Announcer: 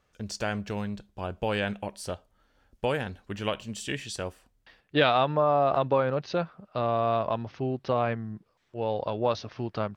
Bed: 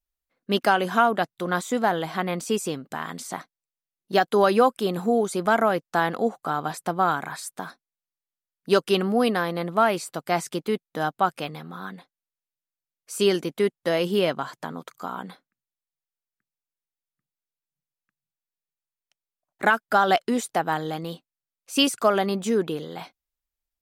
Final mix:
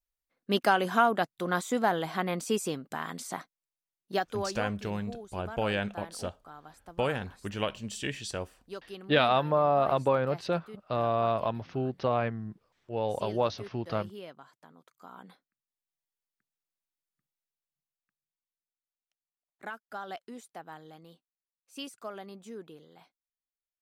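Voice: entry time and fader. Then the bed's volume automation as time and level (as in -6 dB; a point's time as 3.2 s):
4.15 s, -1.5 dB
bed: 3.95 s -4 dB
4.74 s -22 dB
14.76 s -22 dB
15.91 s -2 dB
17.29 s -2 dB
19.68 s -20.5 dB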